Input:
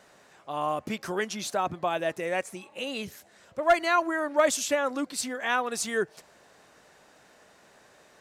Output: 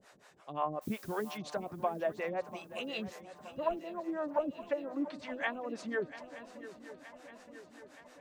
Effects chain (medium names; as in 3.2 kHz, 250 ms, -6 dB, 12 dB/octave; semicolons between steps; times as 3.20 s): low-pass that closes with the level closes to 400 Hz, closed at -22 dBFS; harmonic tremolo 5.6 Hz, depth 100%, crossover 420 Hz; 0.81–1.36 s: added noise blue -55 dBFS; on a send: shuffle delay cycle 921 ms, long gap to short 3:1, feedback 59%, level -15 dB